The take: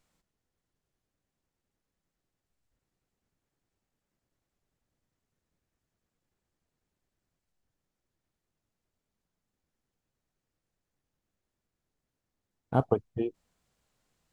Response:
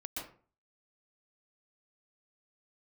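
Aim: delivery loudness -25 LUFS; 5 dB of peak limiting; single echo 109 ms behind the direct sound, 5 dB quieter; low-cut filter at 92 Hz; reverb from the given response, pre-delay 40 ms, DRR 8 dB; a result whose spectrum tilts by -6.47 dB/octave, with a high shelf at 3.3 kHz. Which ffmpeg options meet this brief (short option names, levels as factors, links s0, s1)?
-filter_complex "[0:a]highpass=92,highshelf=f=3300:g=6.5,alimiter=limit=0.188:level=0:latency=1,aecho=1:1:109:0.562,asplit=2[s0][s1];[1:a]atrim=start_sample=2205,adelay=40[s2];[s1][s2]afir=irnorm=-1:irlink=0,volume=0.398[s3];[s0][s3]amix=inputs=2:normalize=0,volume=2.24"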